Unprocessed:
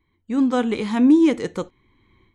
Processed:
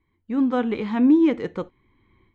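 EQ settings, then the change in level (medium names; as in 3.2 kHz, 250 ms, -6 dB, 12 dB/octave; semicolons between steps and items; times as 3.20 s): low-pass 2.8 kHz 12 dB/octave; -2.0 dB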